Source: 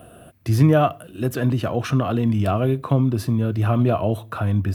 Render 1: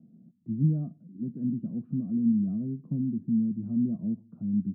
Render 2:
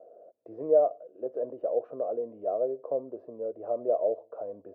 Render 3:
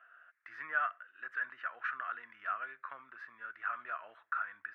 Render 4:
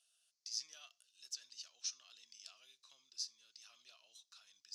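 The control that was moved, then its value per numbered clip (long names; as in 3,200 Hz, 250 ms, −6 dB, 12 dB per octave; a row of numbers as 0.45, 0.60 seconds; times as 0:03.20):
flat-topped band-pass, frequency: 200, 530, 1,600, 5,500 Hertz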